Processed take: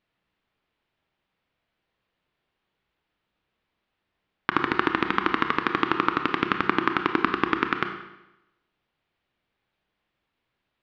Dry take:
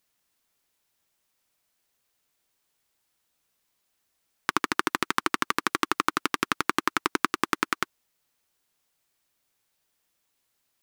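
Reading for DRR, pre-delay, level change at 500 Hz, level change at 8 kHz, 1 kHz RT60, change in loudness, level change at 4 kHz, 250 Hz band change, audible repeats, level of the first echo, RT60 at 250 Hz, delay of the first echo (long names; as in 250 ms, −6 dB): 6.0 dB, 25 ms, +5.5 dB, below −20 dB, 0.90 s, +2.5 dB, −1.5 dB, +5.5 dB, no echo audible, no echo audible, 0.90 s, no echo audible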